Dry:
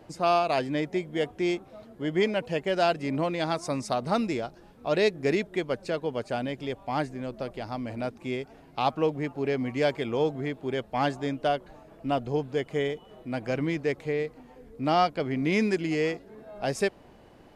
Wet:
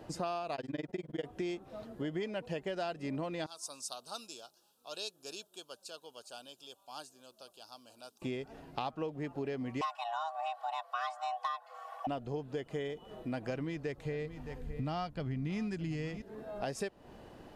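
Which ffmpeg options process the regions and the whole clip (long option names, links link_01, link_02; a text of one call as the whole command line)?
ffmpeg -i in.wav -filter_complex "[0:a]asettb=1/sr,asplit=3[link_01][link_02][link_03];[link_01]atrim=end=0.554[link_04];[link_02]atrim=start=0.55:end=1.25,asetpts=PTS-STARTPTS,afade=type=in:duration=0.004:curve=qsin,afade=type=out:start_time=0.696:duration=0.004:curve=qsin,highshelf=frequency=6900:gain=-6,tremolo=f=20:d=1[link_05];[link_03]atrim=start=1.246[link_06];[link_04][link_05]acrossfade=duration=0.004:curve1=hsin:curve2=qsin[link_07];[link_07][link_06]acrossfade=duration=0.004:curve1=qsin:curve2=hsin,asettb=1/sr,asplit=3[link_08][link_09][link_10];[link_08]atrim=end=3.464[link_11];[link_09]atrim=start=3.46:end=8.22,asetpts=PTS-STARTPTS,afade=type=in:duration=0.004:curve=qsin,afade=type=out:start_time=4.756:duration=0.004:curve=qsin,asuperstop=centerf=2000:order=4:qfactor=1.5,aderivative[link_12];[link_10]atrim=start=8.216[link_13];[link_11][link_12]acrossfade=duration=0.004:curve1=hsin:curve2=qsin[link_14];[link_14][link_13]acrossfade=duration=0.004:curve1=qsin:curve2=hsin,asettb=1/sr,asplit=3[link_15][link_16][link_17];[link_15]atrim=end=9.814[link_18];[link_16]atrim=start=9.81:end=12.07,asetpts=PTS-STARTPTS,afade=type=in:duration=0.004:curve=qsin,afade=type=out:start_time=2.256:duration=0.004:curve=qsin,afreqshift=480,aecho=1:1:2.7:0.99,atrim=end_sample=99666[link_19];[link_17]atrim=start=12.066[link_20];[link_18][link_19]acrossfade=duration=0.004:curve1=hsin:curve2=qsin[link_21];[link_21][link_20]acrossfade=duration=0.004:curve1=qsin:curve2=hsin,asettb=1/sr,asplit=3[link_22][link_23][link_24];[link_22]atrim=end=13.484[link_25];[link_23]atrim=start=13.48:end=16.22,asetpts=PTS-STARTPTS,afade=type=in:duration=0.004:curve=qsin,afade=type=out:start_time=2.736:duration=0.004:curve=qsin,aecho=1:1:616:0.126,atrim=end_sample=120834,asubboost=boost=10.5:cutoff=150[link_26];[link_24]atrim=start=16.216[link_27];[link_25][link_26]acrossfade=duration=0.004:curve1=hsin:curve2=qsin[link_28];[link_28][link_27]acrossfade=duration=0.004:curve1=qsin:curve2=hsin,bandreject=frequency=2200:width=11,acompressor=threshold=-36dB:ratio=6,volume=1dB" out.wav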